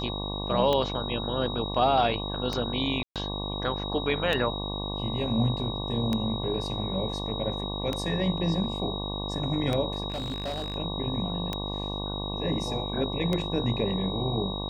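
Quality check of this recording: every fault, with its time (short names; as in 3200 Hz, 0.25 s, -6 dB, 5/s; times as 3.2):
buzz 50 Hz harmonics 23 -34 dBFS
tick 33 1/3 rpm -14 dBFS
tone 3800 Hz -35 dBFS
3.03–3.16 gap 0.127 s
10.1–10.76 clipped -28 dBFS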